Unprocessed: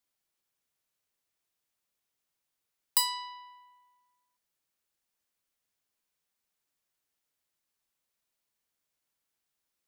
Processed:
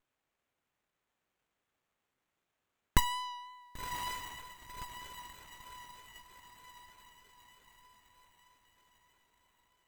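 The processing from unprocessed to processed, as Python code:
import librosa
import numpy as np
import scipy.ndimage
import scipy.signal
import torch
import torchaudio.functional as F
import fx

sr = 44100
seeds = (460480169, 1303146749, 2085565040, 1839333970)

y = fx.echo_diffused(x, sr, ms=1064, feedback_pct=51, wet_db=-6.0)
y = fx.vibrato(y, sr, rate_hz=3.2, depth_cents=17.0)
y = fx.running_max(y, sr, window=9)
y = F.gain(torch.from_numpy(y), 2.5).numpy()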